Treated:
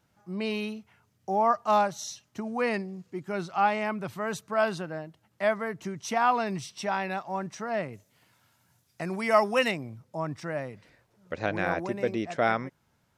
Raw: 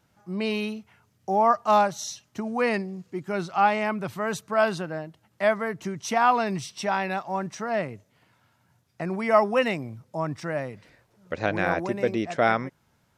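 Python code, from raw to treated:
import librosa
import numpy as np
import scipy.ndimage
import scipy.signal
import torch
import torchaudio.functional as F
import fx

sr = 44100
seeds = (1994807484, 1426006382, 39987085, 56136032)

y = fx.high_shelf(x, sr, hz=fx.line((7.92, 4500.0), (9.7, 2600.0)), db=11.5, at=(7.92, 9.7), fade=0.02)
y = y * librosa.db_to_amplitude(-3.5)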